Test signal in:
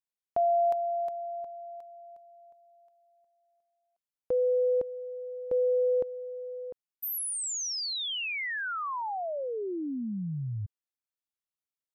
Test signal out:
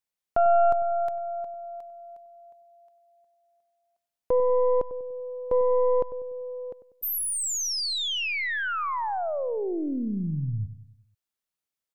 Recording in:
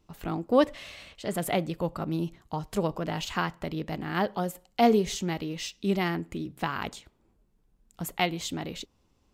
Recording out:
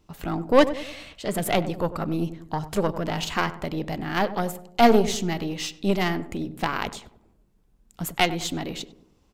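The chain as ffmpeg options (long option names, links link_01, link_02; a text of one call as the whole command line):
ffmpeg -i in.wav -filter_complex "[0:a]aeval=exprs='0.398*(cos(1*acos(clip(val(0)/0.398,-1,1)))-cos(1*PI/2))+0.0501*(cos(6*acos(clip(val(0)/0.398,-1,1)))-cos(6*PI/2))':channel_layout=same,asplit=2[link_01][link_02];[link_02]adelay=97,lowpass=frequency=970:poles=1,volume=-12dB,asplit=2[link_03][link_04];[link_04]adelay=97,lowpass=frequency=970:poles=1,volume=0.5,asplit=2[link_05][link_06];[link_06]adelay=97,lowpass=frequency=970:poles=1,volume=0.5,asplit=2[link_07][link_08];[link_08]adelay=97,lowpass=frequency=970:poles=1,volume=0.5,asplit=2[link_09][link_10];[link_10]adelay=97,lowpass=frequency=970:poles=1,volume=0.5[link_11];[link_01][link_03][link_05][link_07][link_09][link_11]amix=inputs=6:normalize=0,volume=4.5dB" out.wav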